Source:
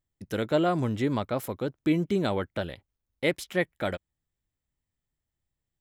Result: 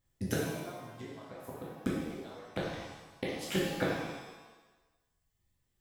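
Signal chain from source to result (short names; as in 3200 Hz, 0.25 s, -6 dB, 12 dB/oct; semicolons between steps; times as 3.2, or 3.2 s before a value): flipped gate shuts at -23 dBFS, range -28 dB; reverb removal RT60 1.6 s; shimmer reverb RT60 1.1 s, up +7 st, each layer -8 dB, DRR -6.5 dB; gain +2.5 dB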